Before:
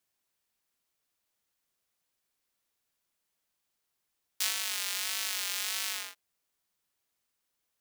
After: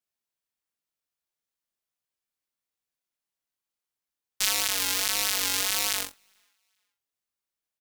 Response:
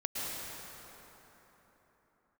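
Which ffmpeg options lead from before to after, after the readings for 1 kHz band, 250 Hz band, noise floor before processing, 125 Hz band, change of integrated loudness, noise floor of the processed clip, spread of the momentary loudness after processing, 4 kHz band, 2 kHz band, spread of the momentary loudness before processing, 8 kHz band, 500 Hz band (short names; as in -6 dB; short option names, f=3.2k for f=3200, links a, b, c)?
+9.0 dB, +17.5 dB, -82 dBFS, n/a, +6.5 dB, under -85 dBFS, 4 LU, +6.5 dB, +6.0 dB, 5 LU, +7.0 dB, +13.0 dB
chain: -filter_complex "[0:a]asplit=2[a][b];[b]alimiter=limit=-17dB:level=0:latency=1,volume=-3dB[c];[a][c]amix=inputs=2:normalize=0,asplit=2[d][e];[e]adelay=25,volume=-3dB[f];[d][f]amix=inputs=2:normalize=0,acontrast=53,aecho=1:1:413|826:0.106|0.0307,aeval=exprs='0.708*(cos(1*acos(clip(val(0)/0.708,-1,1)))-cos(1*PI/2))+0.02*(cos(6*acos(clip(val(0)/0.708,-1,1)))-cos(6*PI/2))+0.112*(cos(7*acos(clip(val(0)/0.708,-1,1)))-cos(7*PI/2))':c=same,volume=-1.5dB"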